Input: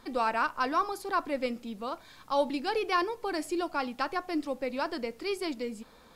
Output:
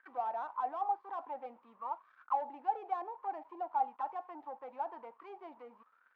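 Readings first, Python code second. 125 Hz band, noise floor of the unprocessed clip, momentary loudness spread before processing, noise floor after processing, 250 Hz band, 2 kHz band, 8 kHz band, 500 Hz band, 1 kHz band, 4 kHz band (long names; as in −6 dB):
can't be measured, −56 dBFS, 9 LU, −70 dBFS, −22.0 dB, −20.5 dB, below −30 dB, −13.0 dB, −3.5 dB, below −25 dB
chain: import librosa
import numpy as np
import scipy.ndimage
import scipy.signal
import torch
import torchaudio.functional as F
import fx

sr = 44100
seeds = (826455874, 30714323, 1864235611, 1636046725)

y = scipy.signal.sosfilt(scipy.signal.cheby2(4, 70, 11000.0, 'lowpass', fs=sr, output='sos'), x)
y = fx.leveller(y, sr, passes=3)
y = fx.auto_wah(y, sr, base_hz=780.0, top_hz=1600.0, q=14.0, full_db=-19.5, direction='down')
y = F.gain(torch.from_numpy(y), -1.0).numpy()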